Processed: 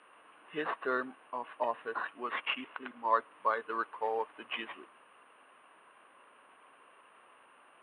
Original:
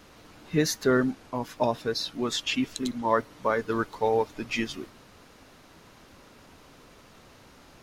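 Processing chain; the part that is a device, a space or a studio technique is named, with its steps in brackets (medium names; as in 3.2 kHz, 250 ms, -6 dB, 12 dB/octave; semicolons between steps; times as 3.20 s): toy sound module (decimation joined by straight lines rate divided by 8×; class-D stage that switches slowly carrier 9.3 kHz; cabinet simulation 500–3600 Hz, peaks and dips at 1.1 kHz +9 dB, 1.6 kHz +4 dB, 2.8 kHz +10 dB); 2.64–3.15 s: treble shelf 9.1 kHz -10 dB; trim -7 dB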